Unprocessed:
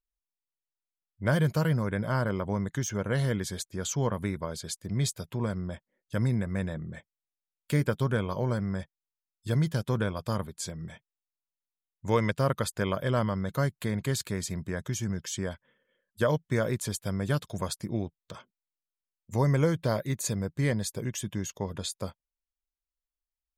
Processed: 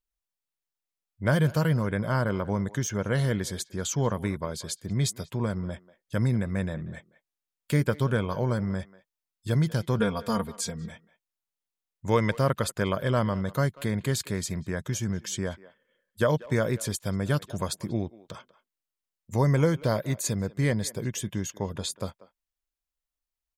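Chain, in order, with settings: 9.99–10.90 s: comb 4.3 ms, depth 87%; speakerphone echo 190 ms, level -18 dB; trim +2 dB

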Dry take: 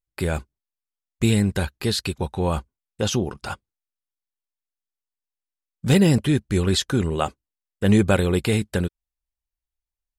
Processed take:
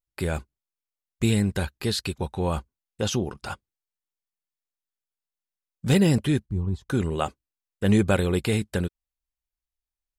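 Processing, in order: 6.46–6.90 s: FFT filter 130 Hz 0 dB, 570 Hz -17 dB, 970 Hz -6 dB, 1.5 kHz -28 dB; trim -3 dB

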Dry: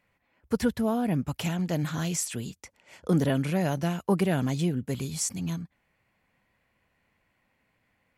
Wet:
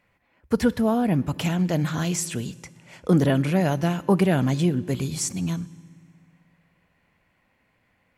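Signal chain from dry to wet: treble shelf 5.4 kHz -4.5 dB; on a send: reverberation RT60 1.8 s, pre-delay 3 ms, DRR 18 dB; on the sum: trim +5 dB

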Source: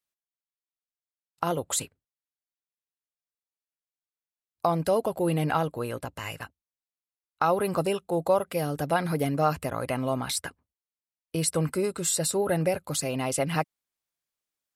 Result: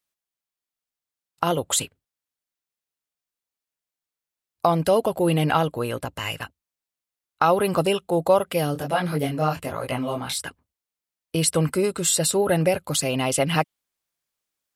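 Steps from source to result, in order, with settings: dynamic bell 3.1 kHz, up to +7 dB, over -53 dBFS, Q 3.3; 8.74–10.46 s: detune thickener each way 46 cents -> 30 cents; trim +5 dB

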